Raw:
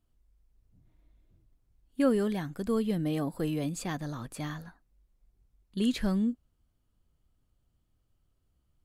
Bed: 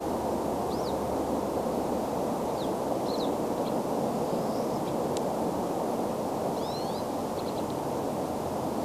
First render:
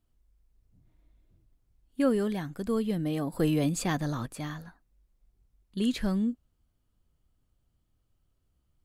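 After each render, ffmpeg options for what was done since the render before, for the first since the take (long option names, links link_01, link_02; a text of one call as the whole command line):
ffmpeg -i in.wav -filter_complex "[0:a]asettb=1/sr,asplit=3[link_01][link_02][link_03];[link_01]atrim=end=3.324[link_04];[link_02]atrim=start=3.32:end=4.26,asetpts=PTS-STARTPTS,afade=type=in:duration=0.004:curve=qsin,afade=type=out:start_time=0.936:duration=0.004:curve=qsin,acontrast=37[link_05];[link_03]atrim=start=4.256[link_06];[link_04][link_05]acrossfade=duration=0.004:curve1=hsin:curve2=qsin[link_07];[link_07][link_06]acrossfade=duration=0.004:curve1=qsin:curve2=hsin" out.wav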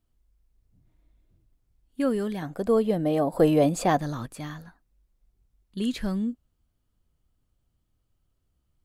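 ffmpeg -i in.wav -filter_complex "[0:a]asettb=1/sr,asplit=3[link_01][link_02][link_03];[link_01]atrim=end=2.424[link_04];[link_02]atrim=start=2.42:end=4,asetpts=PTS-STARTPTS,afade=type=in:duration=0.004:curve=qsin,afade=type=out:start_time=1.576:duration=0.004:curve=qsin,equalizer=frequency=640:width=0.96:gain=14.5[link_05];[link_03]atrim=start=3.996[link_06];[link_04][link_05]acrossfade=duration=0.004:curve1=hsin:curve2=qsin[link_07];[link_07][link_06]acrossfade=duration=0.004:curve1=qsin:curve2=hsin" out.wav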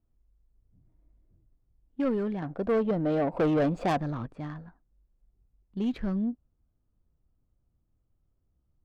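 ffmpeg -i in.wav -af "adynamicsmooth=sensitivity=2.5:basefreq=1200,asoftclip=type=tanh:threshold=-20.5dB" out.wav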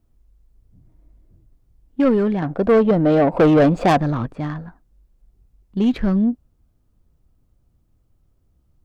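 ffmpeg -i in.wav -af "volume=11.5dB" out.wav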